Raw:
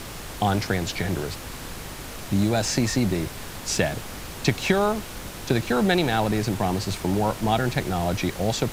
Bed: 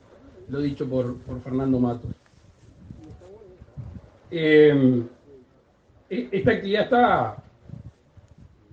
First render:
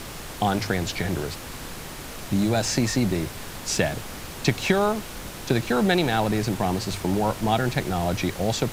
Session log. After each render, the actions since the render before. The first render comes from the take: de-hum 50 Hz, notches 2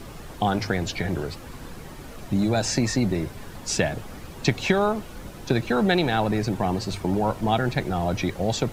noise reduction 10 dB, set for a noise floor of -37 dBFS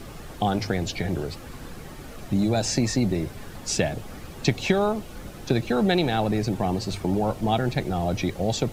band-stop 970 Hz, Q 15; dynamic bell 1.5 kHz, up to -5 dB, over -42 dBFS, Q 1.4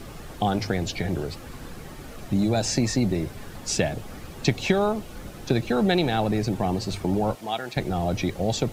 7.35–7.77 s: high-pass 1 kHz 6 dB/octave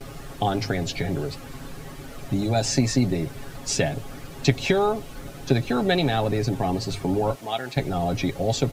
gate with hold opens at -36 dBFS; comb 7.3 ms, depth 55%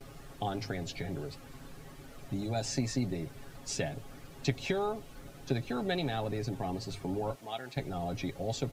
trim -11 dB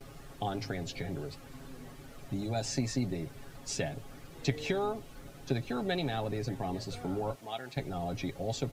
add bed -31 dB

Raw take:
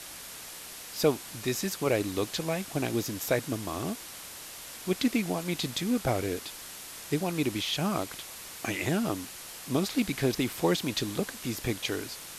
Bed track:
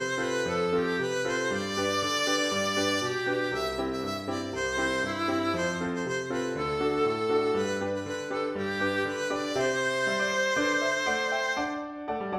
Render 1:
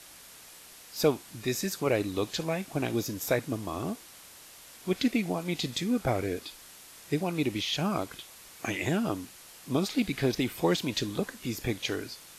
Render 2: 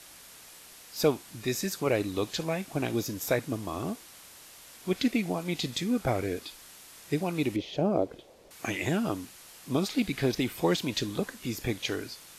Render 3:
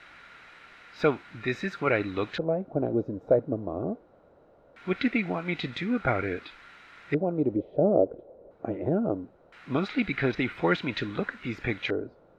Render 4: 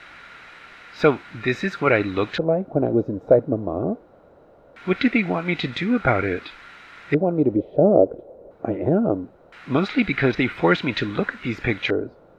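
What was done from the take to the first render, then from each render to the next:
noise print and reduce 7 dB
7.56–8.51 s: FFT filter 180 Hz 0 dB, 540 Hz +11 dB, 1.2 kHz -10 dB, 4.7 kHz -12 dB, 11 kHz -19 dB
LFO low-pass square 0.21 Hz 560–2100 Hz; small resonant body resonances 1.4/3.9 kHz, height 11 dB, ringing for 25 ms
trim +7 dB; peak limiter -3 dBFS, peak gain reduction 0.5 dB

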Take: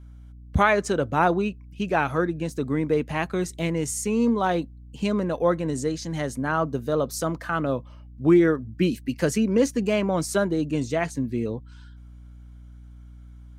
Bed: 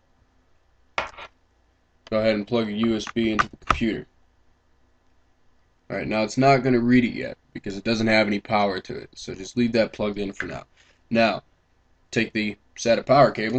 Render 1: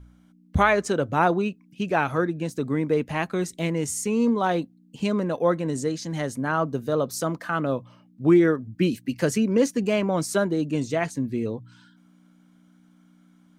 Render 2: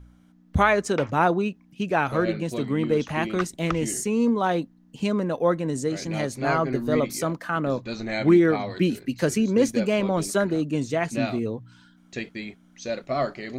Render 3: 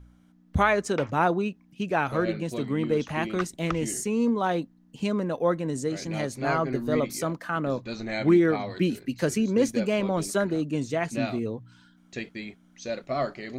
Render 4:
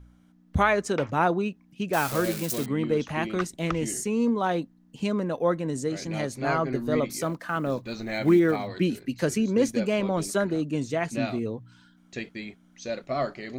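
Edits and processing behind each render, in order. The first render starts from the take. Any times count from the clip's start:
de-hum 60 Hz, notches 2
add bed -10 dB
trim -2.5 dB
1.93–2.66 s: zero-crossing glitches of -22 dBFS; 7.21–8.68 s: block-companded coder 7-bit

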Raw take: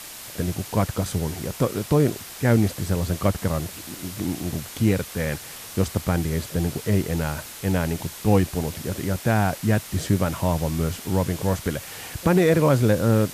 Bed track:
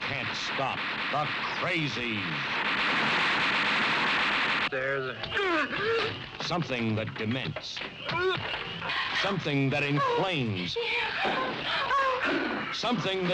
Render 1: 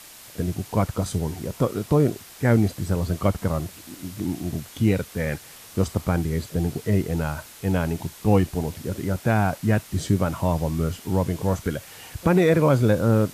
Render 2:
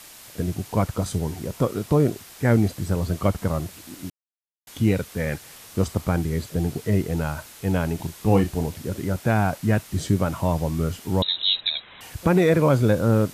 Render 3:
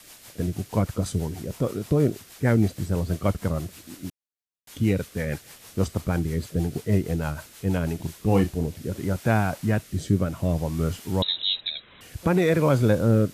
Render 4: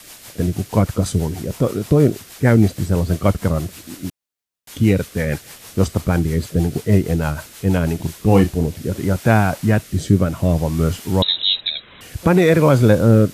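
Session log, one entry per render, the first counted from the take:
noise print and reduce 6 dB
4.10–4.67 s: mute; 7.96–8.67 s: doubling 36 ms -9 dB; 11.22–12.01 s: frequency inversion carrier 3.9 kHz
rotary cabinet horn 6.3 Hz, later 0.6 Hz, at 7.77 s
trim +7.5 dB; peak limiter -1 dBFS, peak gain reduction 1 dB

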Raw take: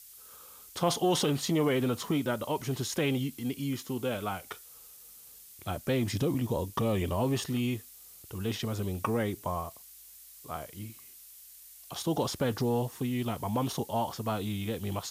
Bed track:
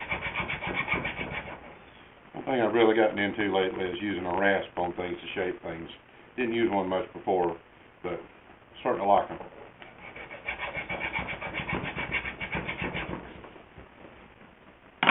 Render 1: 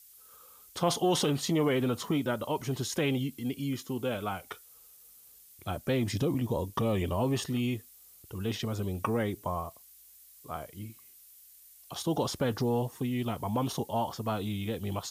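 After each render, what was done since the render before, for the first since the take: noise reduction 6 dB, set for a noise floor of -52 dBFS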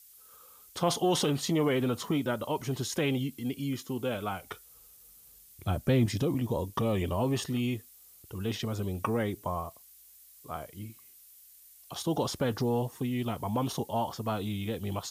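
4.42–6.06 s: bass shelf 210 Hz +9.5 dB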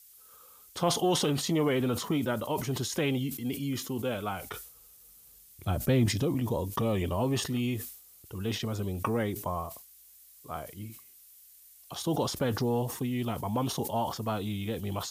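decay stretcher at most 87 dB/s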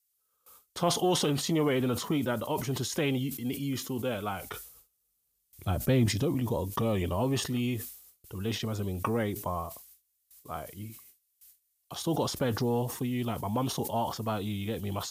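gate with hold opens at -43 dBFS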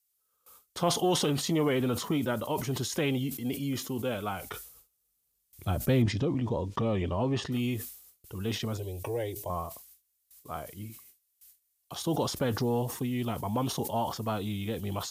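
3.23–3.87 s: peaking EQ 630 Hz +6 dB; 6.02–7.52 s: distance through air 120 m; 8.77–9.50 s: static phaser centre 520 Hz, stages 4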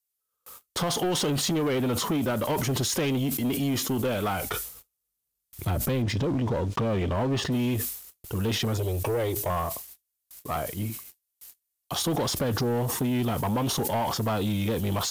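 compression, threshold -31 dBFS, peak gain reduction 10.5 dB; waveshaping leveller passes 3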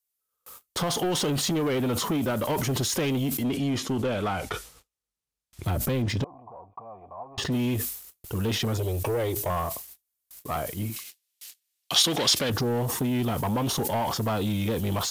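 3.43–5.65 s: distance through air 58 m; 6.24–7.38 s: cascade formant filter a; 10.96–12.50 s: frequency weighting D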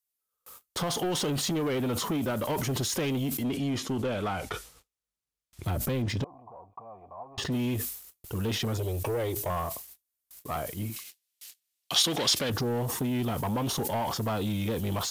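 trim -3 dB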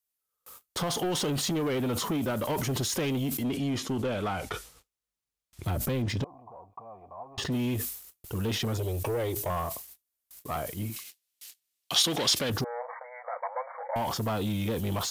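12.64–13.96 s: brick-wall FIR band-pass 480–2300 Hz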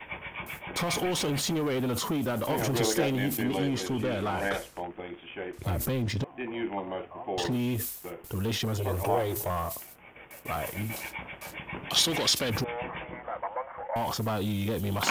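add bed track -7 dB

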